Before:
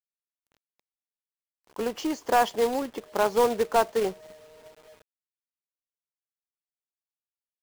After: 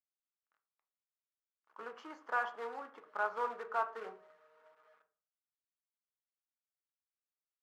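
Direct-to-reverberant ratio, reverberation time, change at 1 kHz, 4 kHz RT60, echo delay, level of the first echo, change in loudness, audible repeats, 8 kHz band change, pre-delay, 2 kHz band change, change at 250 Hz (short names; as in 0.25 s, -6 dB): 6.0 dB, 0.45 s, -11.0 dB, 0.40 s, none, none, -13.5 dB, none, under -25 dB, 3 ms, -5.5 dB, -25.5 dB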